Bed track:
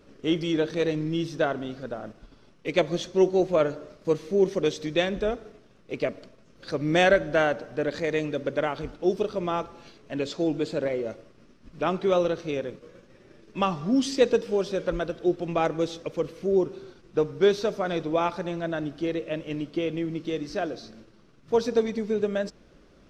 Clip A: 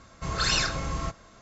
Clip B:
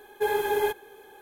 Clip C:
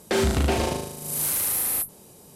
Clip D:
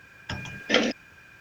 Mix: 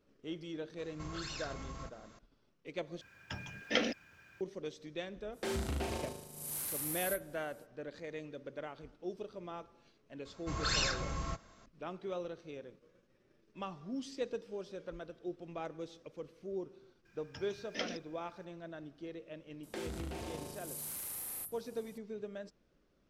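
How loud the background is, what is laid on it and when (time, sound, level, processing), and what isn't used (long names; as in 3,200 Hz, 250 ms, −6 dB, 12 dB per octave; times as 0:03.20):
bed track −17.5 dB
0:00.78: mix in A −6.5 dB + downward compressor 4 to 1, threshold −36 dBFS
0:03.01: overwrite with D −9.5 dB
0:05.32: mix in C −14.5 dB, fades 0.05 s
0:10.25: mix in A −7.5 dB
0:17.05: mix in D −18 dB + parametric band 5,300 Hz +7 dB 0.55 octaves
0:19.63: mix in C −11.5 dB + downward compressor, threshold −28 dBFS
not used: B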